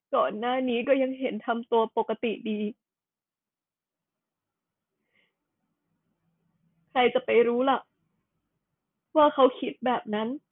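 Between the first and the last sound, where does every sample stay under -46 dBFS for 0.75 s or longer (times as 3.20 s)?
2.72–6.95 s
7.82–9.15 s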